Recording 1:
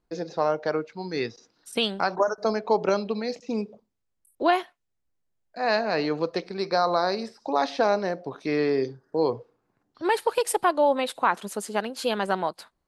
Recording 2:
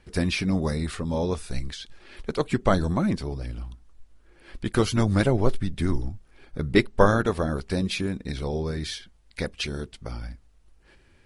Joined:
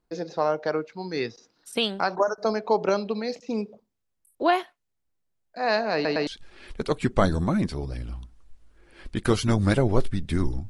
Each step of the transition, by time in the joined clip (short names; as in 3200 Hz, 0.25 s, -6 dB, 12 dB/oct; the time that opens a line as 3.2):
recording 1
5.94 stutter in place 0.11 s, 3 plays
6.27 switch to recording 2 from 1.76 s